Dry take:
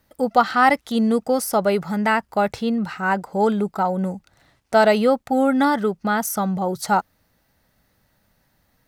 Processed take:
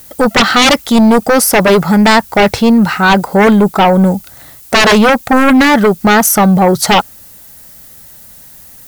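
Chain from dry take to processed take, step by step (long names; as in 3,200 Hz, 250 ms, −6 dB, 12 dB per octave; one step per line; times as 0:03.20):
background noise violet −53 dBFS
sine wavefolder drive 13 dB, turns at −3.5 dBFS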